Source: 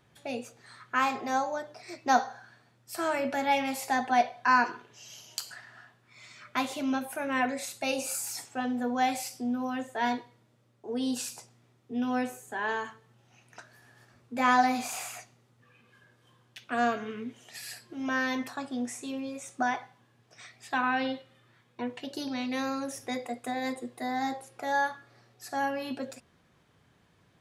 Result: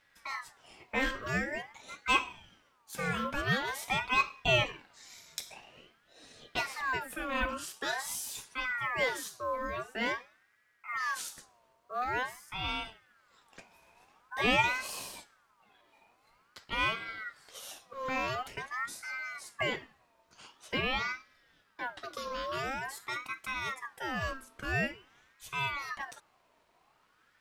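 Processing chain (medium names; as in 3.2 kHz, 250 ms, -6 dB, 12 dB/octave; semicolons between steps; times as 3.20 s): companded quantiser 8-bit; ring modulator with a swept carrier 1.3 kHz, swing 40%, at 0.47 Hz; trim -1 dB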